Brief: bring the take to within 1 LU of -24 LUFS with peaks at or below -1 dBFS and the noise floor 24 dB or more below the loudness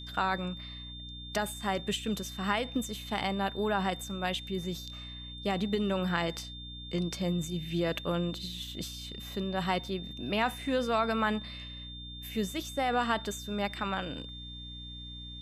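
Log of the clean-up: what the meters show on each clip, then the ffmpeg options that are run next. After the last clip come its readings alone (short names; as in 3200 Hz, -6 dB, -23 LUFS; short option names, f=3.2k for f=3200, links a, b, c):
hum 60 Hz; harmonics up to 300 Hz; hum level -44 dBFS; steady tone 3600 Hz; tone level -44 dBFS; loudness -33.5 LUFS; peak -14.5 dBFS; loudness target -24.0 LUFS
-> -af "bandreject=f=60:t=h:w=6,bandreject=f=120:t=h:w=6,bandreject=f=180:t=h:w=6,bandreject=f=240:t=h:w=6,bandreject=f=300:t=h:w=6"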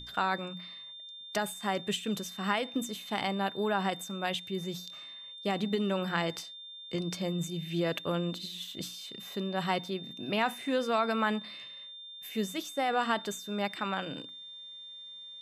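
hum none; steady tone 3600 Hz; tone level -44 dBFS
-> -af "bandreject=f=3.6k:w=30"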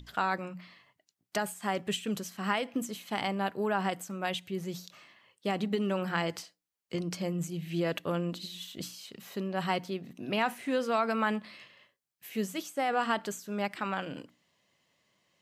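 steady tone none; loudness -33.5 LUFS; peak -14.5 dBFS; loudness target -24.0 LUFS
-> -af "volume=9.5dB"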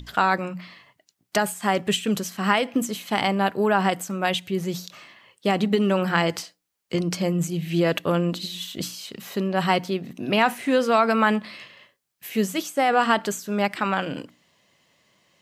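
loudness -24.0 LUFS; peak -5.0 dBFS; noise floor -75 dBFS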